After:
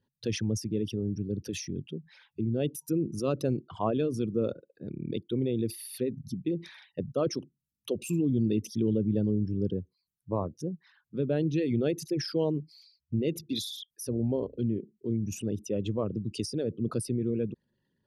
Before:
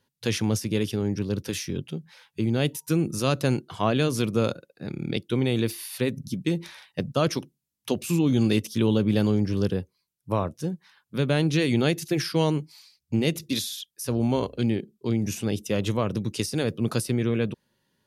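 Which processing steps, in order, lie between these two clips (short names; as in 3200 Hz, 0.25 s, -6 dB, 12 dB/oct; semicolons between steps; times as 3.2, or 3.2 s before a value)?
formant sharpening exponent 2; gain -5 dB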